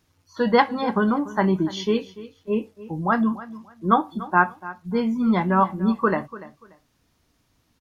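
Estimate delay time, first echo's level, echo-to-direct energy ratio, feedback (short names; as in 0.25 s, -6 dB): 0.291 s, -17.0 dB, -17.0 dB, 23%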